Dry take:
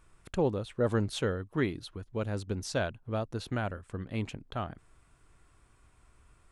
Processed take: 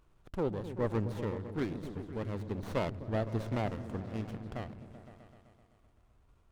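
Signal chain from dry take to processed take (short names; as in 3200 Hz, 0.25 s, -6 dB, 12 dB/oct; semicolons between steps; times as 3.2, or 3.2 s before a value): random-step tremolo; repeats that get brighter 0.128 s, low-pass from 200 Hz, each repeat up 1 oct, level -6 dB; running maximum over 17 samples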